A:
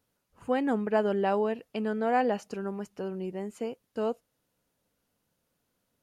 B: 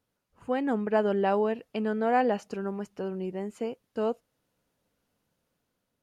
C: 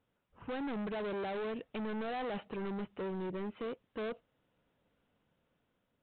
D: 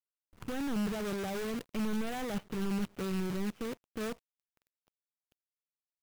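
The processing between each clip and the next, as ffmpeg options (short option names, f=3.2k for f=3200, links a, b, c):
-af "highshelf=f=6.7k:g=-6,dynaudnorm=f=290:g=5:m=3.5dB,volume=-2dB"
-af "alimiter=limit=-23dB:level=0:latency=1:release=51,aresample=8000,asoftclip=type=hard:threshold=-37dB,aresample=44100,volume=1dB"
-af "bass=f=250:g=13,treble=f=4k:g=5,acrusher=bits=7:dc=4:mix=0:aa=0.000001,volume=-2dB"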